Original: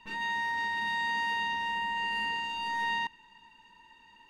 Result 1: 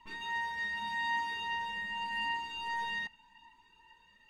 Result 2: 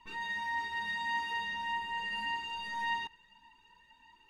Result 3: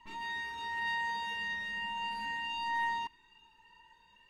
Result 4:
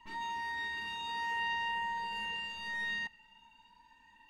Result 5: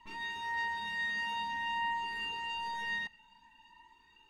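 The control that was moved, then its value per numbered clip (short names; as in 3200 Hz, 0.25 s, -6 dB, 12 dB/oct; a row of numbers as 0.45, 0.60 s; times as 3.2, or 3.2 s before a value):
cascading flanger, rate: 0.85, 1.7, 0.35, 0.2, 0.52 Hz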